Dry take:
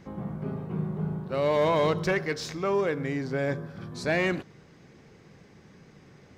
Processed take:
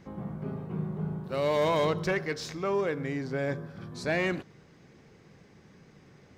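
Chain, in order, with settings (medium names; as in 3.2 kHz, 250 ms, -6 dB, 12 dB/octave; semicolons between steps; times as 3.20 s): 1.24–1.85 s: treble shelf 4.5 kHz +8.5 dB; trim -2.5 dB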